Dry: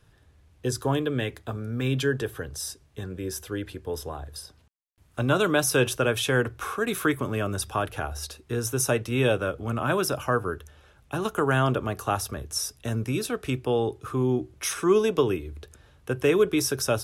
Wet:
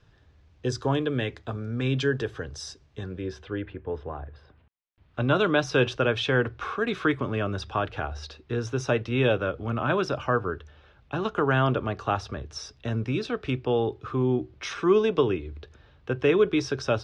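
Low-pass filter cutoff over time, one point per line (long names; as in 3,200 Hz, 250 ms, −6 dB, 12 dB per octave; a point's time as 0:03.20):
low-pass filter 24 dB per octave
0:03.01 5,900 Hz
0:03.73 2,500 Hz
0:04.38 2,500 Hz
0:05.34 4,600 Hz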